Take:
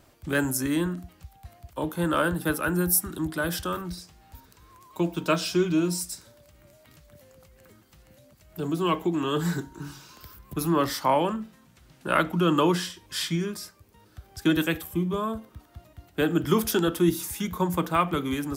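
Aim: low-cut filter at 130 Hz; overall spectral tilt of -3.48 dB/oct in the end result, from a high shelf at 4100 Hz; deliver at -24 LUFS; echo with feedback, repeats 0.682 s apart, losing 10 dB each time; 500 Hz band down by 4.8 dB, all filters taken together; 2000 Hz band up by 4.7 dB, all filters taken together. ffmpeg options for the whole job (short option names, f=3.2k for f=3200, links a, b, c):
-af "highpass=130,equalizer=f=500:t=o:g=-7.5,equalizer=f=2k:t=o:g=6.5,highshelf=f=4.1k:g=4,aecho=1:1:682|1364|2046|2728:0.316|0.101|0.0324|0.0104,volume=2.5dB"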